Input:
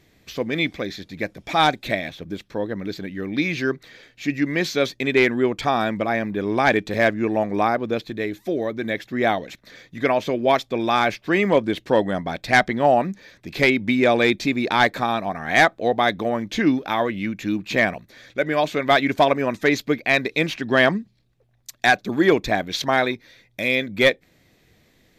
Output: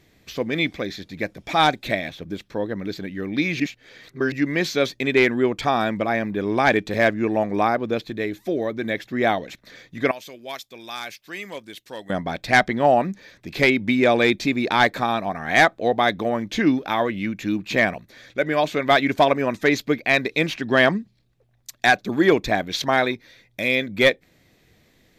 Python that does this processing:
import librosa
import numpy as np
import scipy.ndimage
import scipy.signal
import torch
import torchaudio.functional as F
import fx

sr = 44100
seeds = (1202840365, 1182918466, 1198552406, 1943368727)

y = fx.pre_emphasis(x, sr, coefficient=0.9, at=(10.11, 12.1))
y = fx.edit(y, sr, fx.reverse_span(start_s=3.6, length_s=0.72), tone=tone)